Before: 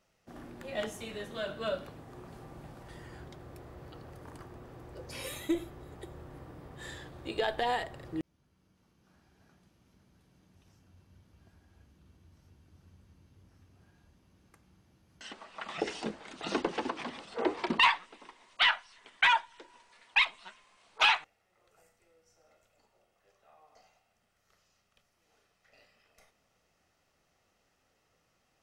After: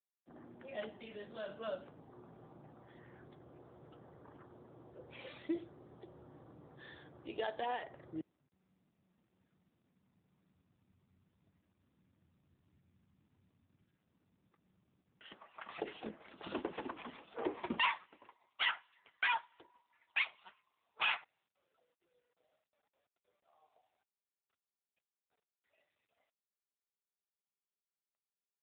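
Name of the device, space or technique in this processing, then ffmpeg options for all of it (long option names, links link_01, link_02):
mobile call with aggressive noise cancelling: -filter_complex "[0:a]asplit=3[link_01][link_02][link_03];[link_01]afade=type=out:start_time=17.46:duration=0.02[link_04];[link_02]adynamicequalizer=threshold=0.00447:dfrequency=160:dqfactor=1.4:tfrequency=160:tqfactor=1.4:attack=5:release=100:ratio=0.375:range=1.5:mode=boostabove:tftype=bell,afade=type=in:start_time=17.46:duration=0.02,afade=type=out:start_time=18.28:duration=0.02[link_05];[link_03]afade=type=in:start_time=18.28:duration=0.02[link_06];[link_04][link_05][link_06]amix=inputs=3:normalize=0,highpass=frequency=130:poles=1,afftdn=noise_reduction=27:noise_floor=-58,volume=-6.5dB" -ar 8000 -c:a libopencore_amrnb -b:a 7950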